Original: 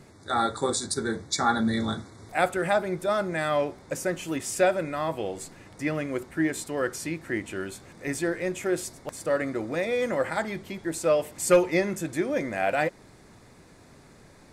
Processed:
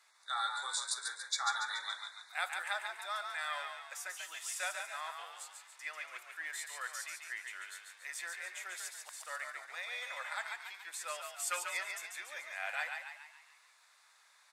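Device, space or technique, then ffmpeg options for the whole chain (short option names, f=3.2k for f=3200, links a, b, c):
headphones lying on a table: -filter_complex "[0:a]highpass=f=1k:w=0.5412,highpass=f=1k:w=1.3066,equalizer=f=3.6k:t=o:w=0.25:g=5,asplit=7[a][b][c][d][e][f][g];[b]adelay=142,afreqshift=49,volume=-5dB[h];[c]adelay=284,afreqshift=98,volume=-11dB[i];[d]adelay=426,afreqshift=147,volume=-17dB[j];[e]adelay=568,afreqshift=196,volume=-23.1dB[k];[f]adelay=710,afreqshift=245,volume=-29.1dB[l];[g]adelay=852,afreqshift=294,volume=-35.1dB[m];[a][h][i][j][k][l][m]amix=inputs=7:normalize=0,volume=-8dB"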